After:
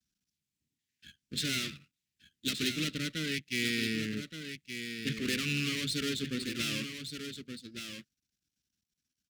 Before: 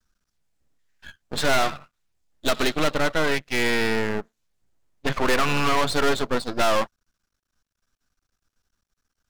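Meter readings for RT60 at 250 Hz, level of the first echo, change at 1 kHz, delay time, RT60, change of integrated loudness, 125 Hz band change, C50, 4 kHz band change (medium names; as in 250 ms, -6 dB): no reverb, -8.0 dB, -26.5 dB, 1172 ms, no reverb, -10.5 dB, -6.0 dB, no reverb, -4.5 dB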